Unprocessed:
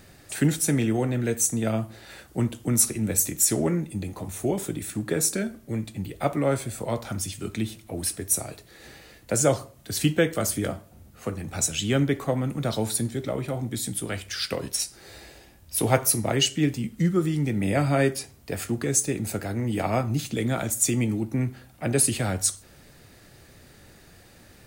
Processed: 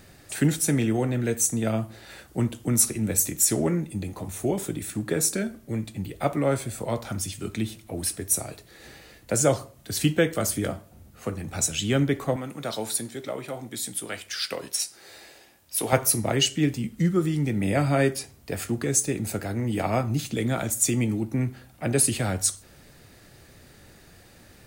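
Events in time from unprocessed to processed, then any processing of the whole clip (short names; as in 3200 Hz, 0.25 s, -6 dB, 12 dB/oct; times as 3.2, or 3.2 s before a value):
12.36–15.93 HPF 480 Hz 6 dB/oct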